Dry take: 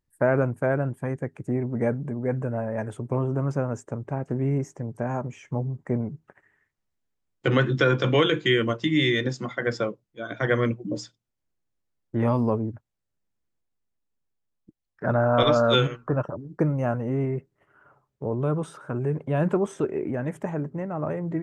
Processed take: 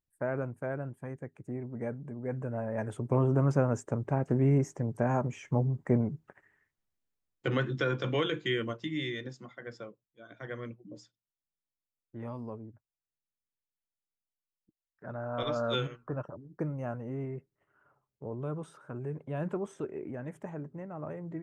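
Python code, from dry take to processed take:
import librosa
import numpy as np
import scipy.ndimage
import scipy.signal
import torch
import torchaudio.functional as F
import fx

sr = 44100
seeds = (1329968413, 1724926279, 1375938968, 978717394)

y = fx.gain(x, sr, db=fx.line((2.01, -11.5), (3.27, 0.0), (5.92, 0.0), (7.74, -9.5), (8.59, -9.5), (9.62, -17.5), (15.12, -17.5), (15.64, -11.0)))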